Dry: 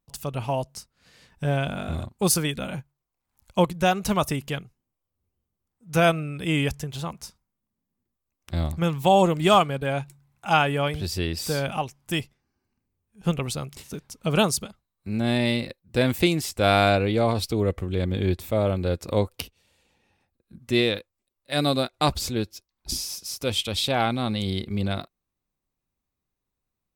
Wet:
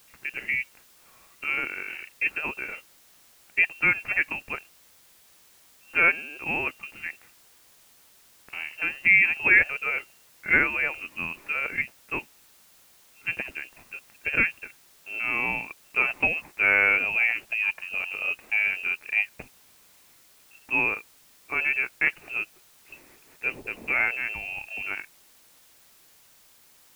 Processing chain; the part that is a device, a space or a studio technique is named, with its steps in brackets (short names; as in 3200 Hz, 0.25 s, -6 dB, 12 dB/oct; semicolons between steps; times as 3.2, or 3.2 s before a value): scrambled radio voice (BPF 320–2900 Hz; inverted band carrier 2900 Hz; white noise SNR 28 dB)